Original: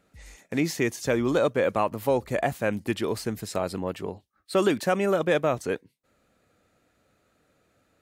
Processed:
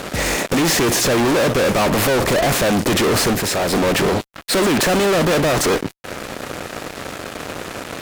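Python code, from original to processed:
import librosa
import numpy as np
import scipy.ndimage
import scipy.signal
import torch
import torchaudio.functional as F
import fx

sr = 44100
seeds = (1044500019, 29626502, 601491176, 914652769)

y = fx.bin_compress(x, sr, power=0.6)
y = fx.tube_stage(y, sr, drive_db=35.0, bias=0.5, at=(3.33, 3.73))
y = fx.fuzz(y, sr, gain_db=39.0, gate_db=-45.0)
y = F.gain(torch.from_numpy(y), -1.5).numpy()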